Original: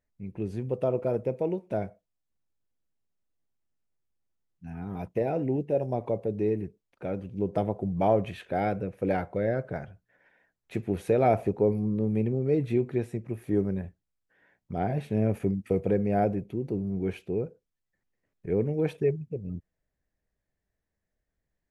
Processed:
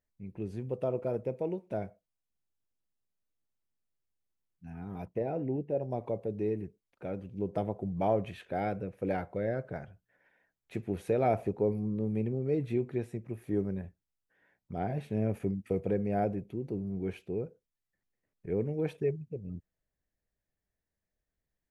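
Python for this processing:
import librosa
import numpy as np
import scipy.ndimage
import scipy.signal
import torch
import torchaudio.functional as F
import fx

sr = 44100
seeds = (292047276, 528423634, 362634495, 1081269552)

y = fx.high_shelf(x, sr, hz=2500.0, db=-9.5, at=(5.05, 5.91))
y = F.gain(torch.from_numpy(y), -5.0).numpy()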